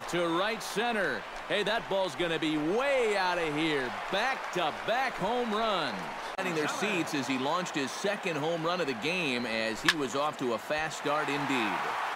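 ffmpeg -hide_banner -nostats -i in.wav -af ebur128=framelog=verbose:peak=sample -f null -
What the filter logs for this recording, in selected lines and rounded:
Integrated loudness:
  I:         -30.2 LUFS
  Threshold: -40.2 LUFS
Loudness range:
  LRA:         1.6 LU
  Threshold: -50.1 LUFS
  LRA low:   -31.0 LUFS
  LRA high:  -29.4 LUFS
Sample peak:
  Peak:       -9.3 dBFS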